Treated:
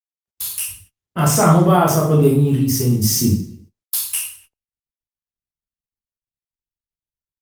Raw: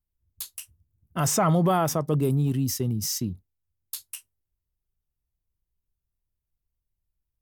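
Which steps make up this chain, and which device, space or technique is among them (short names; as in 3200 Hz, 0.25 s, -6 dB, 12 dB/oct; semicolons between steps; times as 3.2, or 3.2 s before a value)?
speakerphone in a meeting room (reverb RT60 0.50 s, pre-delay 12 ms, DRR -4 dB; speakerphone echo 0.28 s, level -25 dB; AGC gain up to 15 dB; gate -43 dBFS, range -38 dB; gain -1 dB; Opus 32 kbps 48000 Hz)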